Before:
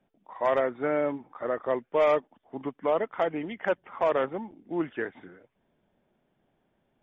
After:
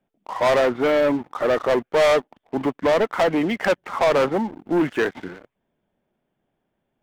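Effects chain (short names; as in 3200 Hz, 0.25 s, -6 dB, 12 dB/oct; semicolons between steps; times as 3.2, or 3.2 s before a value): sample leveller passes 3; gain +3 dB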